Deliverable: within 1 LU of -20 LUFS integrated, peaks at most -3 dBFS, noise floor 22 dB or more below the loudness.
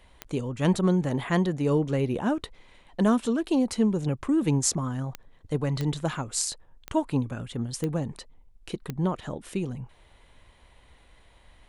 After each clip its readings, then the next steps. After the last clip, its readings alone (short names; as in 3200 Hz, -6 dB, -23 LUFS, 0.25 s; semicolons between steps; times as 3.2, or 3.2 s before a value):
clicks 6; loudness -27.5 LUFS; peak -7.5 dBFS; loudness target -20.0 LUFS
-> de-click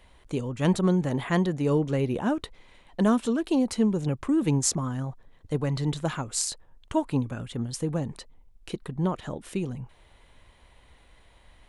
clicks 0; loudness -27.5 LUFS; peak -7.5 dBFS; loudness target -20.0 LUFS
-> gain +7.5 dB; limiter -3 dBFS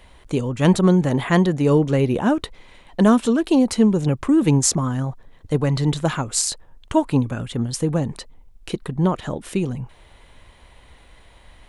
loudness -20.0 LUFS; peak -3.0 dBFS; noise floor -50 dBFS